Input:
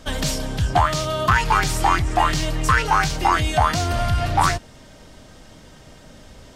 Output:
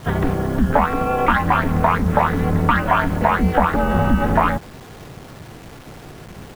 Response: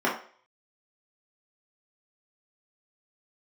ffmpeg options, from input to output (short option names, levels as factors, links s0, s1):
-filter_complex "[0:a]lowpass=f=1700:w=0.5412,lowpass=f=1700:w=1.3066,acompressor=threshold=0.112:ratio=4,asplit=3[s0][s1][s2];[s1]asetrate=35002,aresample=44100,atempo=1.25992,volume=0.224[s3];[s2]asetrate=88200,aresample=44100,atempo=0.5,volume=0.2[s4];[s0][s3][s4]amix=inputs=3:normalize=0,acrusher=bits=7:mix=0:aa=0.000001,aeval=exprs='val(0)*sin(2*PI*130*n/s)':c=same,volume=2.82"